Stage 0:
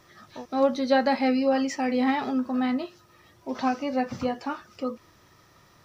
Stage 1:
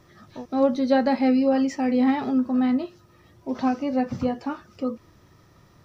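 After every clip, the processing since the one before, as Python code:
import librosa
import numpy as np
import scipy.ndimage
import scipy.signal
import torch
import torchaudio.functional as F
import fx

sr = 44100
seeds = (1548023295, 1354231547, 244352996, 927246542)

y = fx.low_shelf(x, sr, hz=480.0, db=10.5)
y = y * 10.0 ** (-3.5 / 20.0)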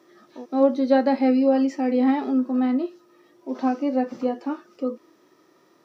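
y = fx.hpss(x, sr, part='harmonic', gain_db=6)
y = fx.ladder_highpass(y, sr, hz=270.0, resonance_pct=45)
y = y * 10.0 ** (2.5 / 20.0)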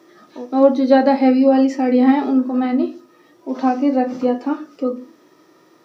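y = fx.room_shoebox(x, sr, seeds[0], volume_m3=170.0, walls='furnished', distance_m=0.52)
y = y * 10.0 ** (6.0 / 20.0)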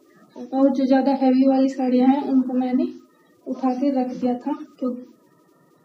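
y = fx.spec_quant(x, sr, step_db=30)
y = fx.bass_treble(y, sr, bass_db=12, treble_db=4)
y = y * 10.0 ** (-7.0 / 20.0)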